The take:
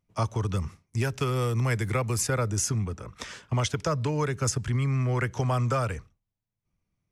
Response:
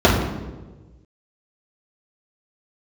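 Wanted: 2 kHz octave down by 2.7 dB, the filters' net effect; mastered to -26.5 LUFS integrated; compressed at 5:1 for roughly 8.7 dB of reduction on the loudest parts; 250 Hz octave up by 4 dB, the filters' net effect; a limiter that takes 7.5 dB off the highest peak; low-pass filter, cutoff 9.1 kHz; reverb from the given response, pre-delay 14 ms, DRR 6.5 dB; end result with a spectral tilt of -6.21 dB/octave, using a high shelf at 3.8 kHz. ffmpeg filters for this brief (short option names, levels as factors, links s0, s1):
-filter_complex "[0:a]lowpass=9100,equalizer=f=250:t=o:g=5.5,equalizer=f=2000:t=o:g=-4.5,highshelf=f=3800:g=3.5,acompressor=threshold=0.0282:ratio=5,alimiter=level_in=1.26:limit=0.0631:level=0:latency=1,volume=0.794,asplit=2[s0][s1];[1:a]atrim=start_sample=2205,adelay=14[s2];[s1][s2]afir=irnorm=-1:irlink=0,volume=0.0237[s3];[s0][s3]amix=inputs=2:normalize=0,volume=2.11"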